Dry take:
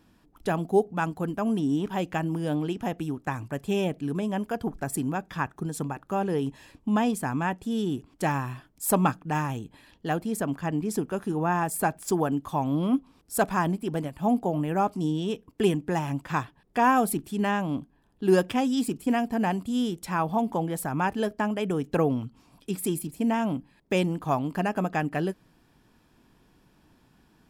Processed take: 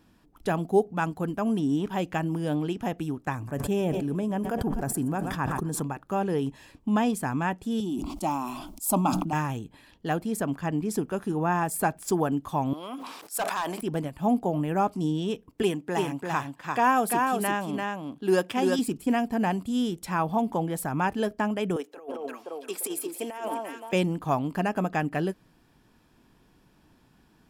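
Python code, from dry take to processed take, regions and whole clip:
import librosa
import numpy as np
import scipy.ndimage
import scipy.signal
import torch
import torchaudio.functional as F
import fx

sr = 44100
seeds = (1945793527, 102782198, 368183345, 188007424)

y = fx.chain(x, sr, fx.peak_eq(hz=3300.0, db=-6.5, octaves=2.3),
    fx.echo_feedback(ms=124, feedback_pct=59, wet_db=-20),
    fx.sustainer(db_per_s=24.0), at=(3.35, 5.8))
y = fx.chain(y, sr, fx.fixed_phaser(hz=460.0, stages=6),
    fx.sustainer(db_per_s=41.0), at=(7.8, 9.33))
y = fx.chain(y, sr, fx.highpass(hz=680.0, slope=12),
    fx.overload_stage(gain_db=24.0),
    fx.sustainer(db_per_s=41.0), at=(12.73, 13.81))
y = fx.chain(y, sr, fx.highpass(hz=310.0, slope=6),
    fx.echo_single(ms=343, db=-3.5), at=(15.62, 18.79))
y = fx.chain(y, sr, fx.highpass(hz=380.0, slope=24),
    fx.echo_alternate(ms=173, hz=1200.0, feedback_pct=58, wet_db=-5),
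    fx.over_compress(threshold_db=-32.0, ratio=-0.5), at=(21.76, 23.93))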